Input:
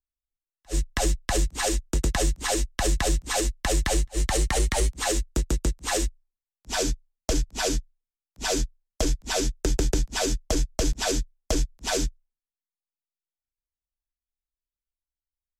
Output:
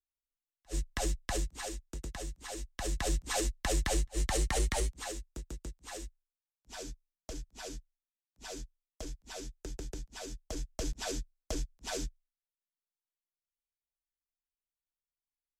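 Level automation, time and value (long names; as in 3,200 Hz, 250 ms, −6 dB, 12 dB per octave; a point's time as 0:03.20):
0:01.33 −9 dB
0:01.81 −17 dB
0:02.51 −17 dB
0:03.17 −7 dB
0:04.74 −7 dB
0:05.24 −18 dB
0:10.29 −18 dB
0:10.81 −11.5 dB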